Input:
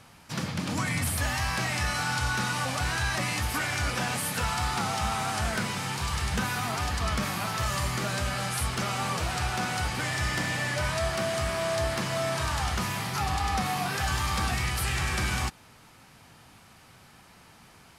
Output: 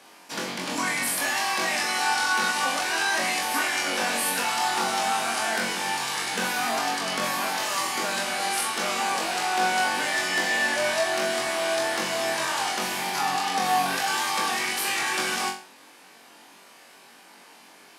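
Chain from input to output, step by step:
high-pass filter 260 Hz 24 dB per octave
notch filter 1,300 Hz, Q 11
on a send: flutter between parallel walls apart 3.7 metres, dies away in 0.38 s
on the sum: level +2.5 dB

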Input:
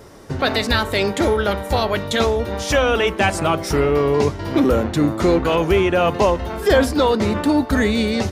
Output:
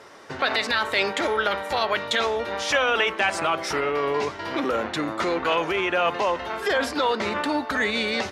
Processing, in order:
brickwall limiter −11 dBFS, peak gain reduction 7.5 dB
resonant band-pass 1,900 Hz, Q 0.61
level +3 dB

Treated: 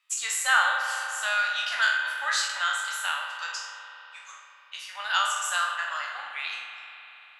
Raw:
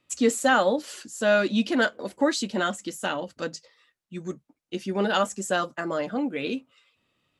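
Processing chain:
peak hold with a decay on every bin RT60 0.63 s
inverse Chebyshev high-pass filter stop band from 400 Hz, stop band 50 dB
spring reverb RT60 3.6 s, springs 38 ms, chirp 65 ms, DRR 4.5 dB

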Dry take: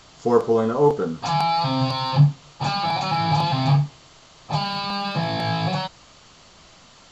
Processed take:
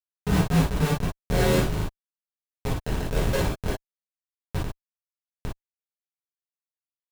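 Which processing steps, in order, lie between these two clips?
single-sideband voice off tune −290 Hz 290–3,300 Hz
comparator with hysteresis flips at −17.5 dBFS
reverb whose tail is shaped and stops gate 80 ms flat, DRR −7 dB
level −2 dB

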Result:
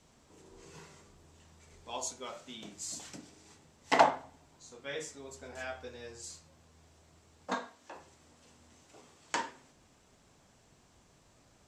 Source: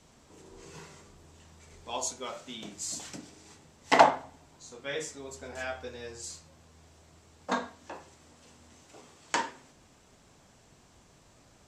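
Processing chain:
0:07.54–0:07.96: low-shelf EQ 200 Hz −12 dB
level −4.5 dB

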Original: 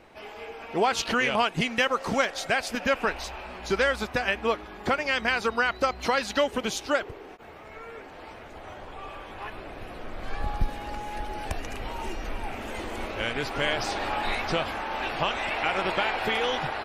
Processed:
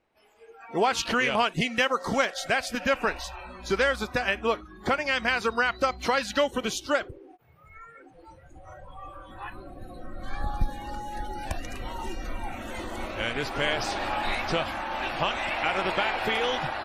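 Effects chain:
noise reduction from a noise print of the clip's start 20 dB

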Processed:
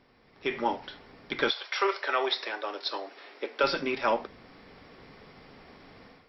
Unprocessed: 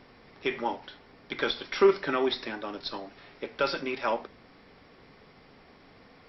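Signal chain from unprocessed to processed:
0:01.49–0:03.62: high-pass filter 630 Hz → 280 Hz 24 dB per octave
automatic gain control gain up to 12 dB
level −8.5 dB

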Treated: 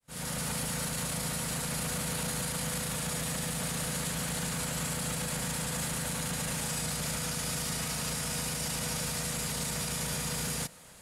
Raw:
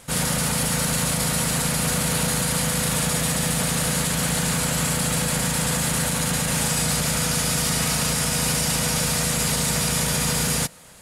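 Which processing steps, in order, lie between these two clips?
fade in at the beginning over 0.60 s
brickwall limiter −19 dBFS, peak gain reduction 9 dB
level −5.5 dB

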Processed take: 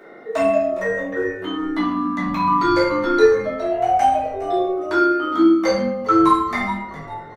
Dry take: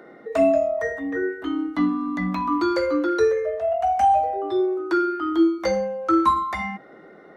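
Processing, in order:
low-shelf EQ 490 Hz −6.5 dB
echo with shifted repeats 411 ms, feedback 39%, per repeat −88 Hz, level −15 dB
rectangular room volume 100 cubic metres, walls mixed, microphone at 1.6 metres

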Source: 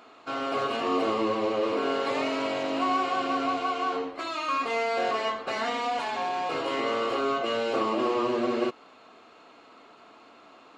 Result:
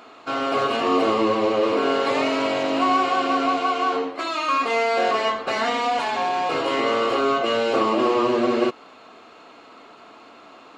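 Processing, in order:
0:03.12–0:05.15: high-pass filter 150 Hz 12 dB per octave
level +6.5 dB

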